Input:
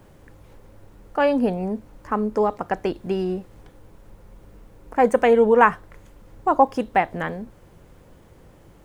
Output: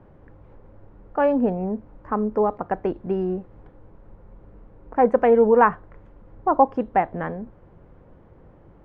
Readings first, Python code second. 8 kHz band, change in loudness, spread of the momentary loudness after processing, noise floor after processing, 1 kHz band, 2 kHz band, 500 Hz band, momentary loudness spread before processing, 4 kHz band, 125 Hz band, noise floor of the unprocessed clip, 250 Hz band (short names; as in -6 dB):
n/a, -0.5 dB, 15 LU, -51 dBFS, -0.5 dB, -5.0 dB, 0.0 dB, 14 LU, under -10 dB, 0.0 dB, -51 dBFS, 0.0 dB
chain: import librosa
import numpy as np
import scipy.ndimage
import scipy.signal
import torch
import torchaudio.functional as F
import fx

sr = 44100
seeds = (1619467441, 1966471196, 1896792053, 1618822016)

y = scipy.signal.sosfilt(scipy.signal.butter(2, 1400.0, 'lowpass', fs=sr, output='sos'), x)